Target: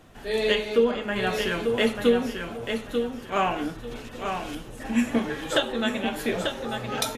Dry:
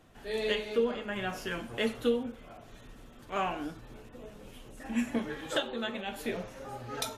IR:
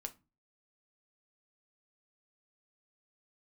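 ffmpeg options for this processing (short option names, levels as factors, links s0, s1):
-filter_complex "[0:a]asettb=1/sr,asplit=3[s0][s1][s2];[s0]atrim=end=3.914[s3];[s1]atrim=start=3.91:end=4.55,asetpts=PTS-STARTPTS,afade=t=in:d=0.004:c=qsin,afade=t=out:st=0.636:d=0.004:c=qsin,equalizer=f=4000:t=o:w=2.9:g=10[s4];[s2]atrim=start=4.546[s5];[s3][s4]acrossfade=d=0.004:c1=hsin:c2=qsin[s6];[s6][s5]acrossfade=d=0.004:c1=qsin:c2=hsin,asplit=2[s7][s8];[s8]aecho=0:1:891|1782|2673:0.501|0.12|0.0289[s9];[s7][s9]amix=inputs=2:normalize=0,volume=2.37"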